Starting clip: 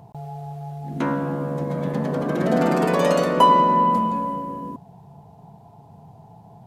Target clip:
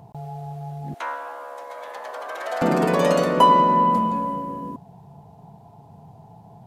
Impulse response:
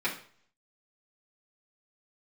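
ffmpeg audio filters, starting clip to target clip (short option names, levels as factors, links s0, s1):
-filter_complex "[0:a]asettb=1/sr,asplit=3[s0][s1][s2];[s0]atrim=end=0.944[s3];[s1]atrim=start=0.94:end=2.62,asetpts=PTS-STARTPTS,afade=t=in:d=0.004:c=qsin,afade=t=out:st=1.676:d=0.004:c=qsin,highpass=f=690:w=0.5412,highpass=f=690:w=1.3066[s4];[s2]atrim=start=2.616[s5];[s3][s4]acrossfade=d=0.004:c1=hsin:c2=qsin[s6];[s6][s5]acrossfade=d=0.004:c1=qsin:c2=hsin"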